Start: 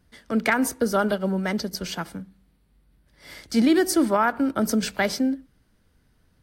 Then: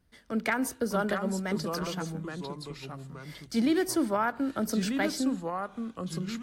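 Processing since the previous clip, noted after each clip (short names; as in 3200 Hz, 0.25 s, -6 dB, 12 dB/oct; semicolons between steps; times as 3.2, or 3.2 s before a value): echoes that change speed 0.546 s, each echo -3 st, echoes 2, each echo -6 dB; gain -7 dB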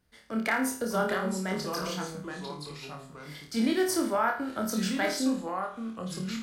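low shelf 390 Hz -5.5 dB; on a send: flutter echo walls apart 4.6 m, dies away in 0.4 s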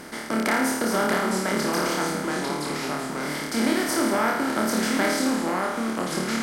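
per-bin compression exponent 0.4; de-hum 62.07 Hz, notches 32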